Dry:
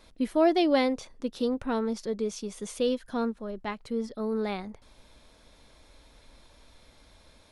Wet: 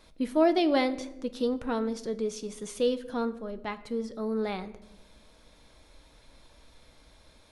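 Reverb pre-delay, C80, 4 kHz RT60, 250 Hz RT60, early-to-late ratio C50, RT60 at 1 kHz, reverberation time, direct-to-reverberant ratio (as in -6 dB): 6 ms, 17.5 dB, 0.60 s, 1.3 s, 15.5 dB, 0.80 s, 0.95 s, 11.0 dB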